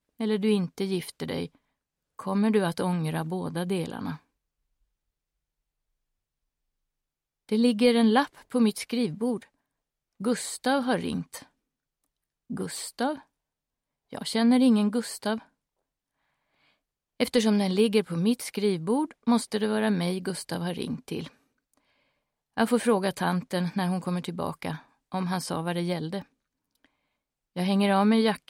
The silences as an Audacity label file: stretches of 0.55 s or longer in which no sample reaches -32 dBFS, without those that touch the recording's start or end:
1.460000	2.190000	silence
4.140000	7.490000	silence
9.370000	10.210000	silence
11.370000	12.510000	silence
13.140000	14.130000	silence
15.380000	17.200000	silence
21.270000	22.570000	silence
26.200000	27.560000	silence